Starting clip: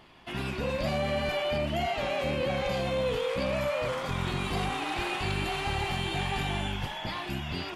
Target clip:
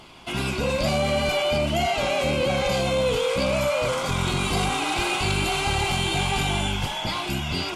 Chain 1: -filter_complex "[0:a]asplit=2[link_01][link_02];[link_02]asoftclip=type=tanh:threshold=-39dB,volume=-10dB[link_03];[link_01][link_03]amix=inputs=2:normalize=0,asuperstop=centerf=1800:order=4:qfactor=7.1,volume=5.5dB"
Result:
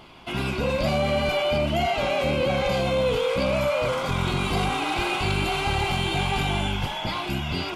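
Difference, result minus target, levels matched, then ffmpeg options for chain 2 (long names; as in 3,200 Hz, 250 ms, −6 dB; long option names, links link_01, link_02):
8,000 Hz band −7.0 dB
-filter_complex "[0:a]asplit=2[link_01][link_02];[link_02]asoftclip=type=tanh:threshold=-39dB,volume=-10dB[link_03];[link_01][link_03]amix=inputs=2:normalize=0,asuperstop=centerf=1800:order=4:qfactor=7.1,equalizer=frequency=7900:width_type=o:width=1.4:gain=9,volume=5.5dB"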